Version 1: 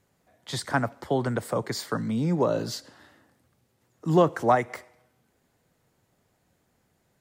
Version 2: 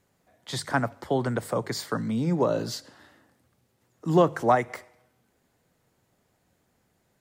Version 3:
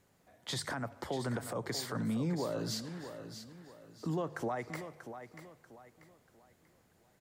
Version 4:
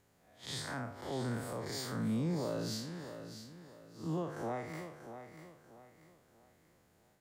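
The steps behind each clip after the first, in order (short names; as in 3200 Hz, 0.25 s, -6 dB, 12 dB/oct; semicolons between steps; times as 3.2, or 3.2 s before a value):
notches 50/100/150 Hz
compressor 5:1, threshold -31 dBFS, peak gain reduction 15 dB; limiter -27 dBFS, peak gain reduction 9.5 dB; feedback echo 0.638 s, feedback 34%, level -10.5 dB
time blur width 0.118 s; gain +1 dB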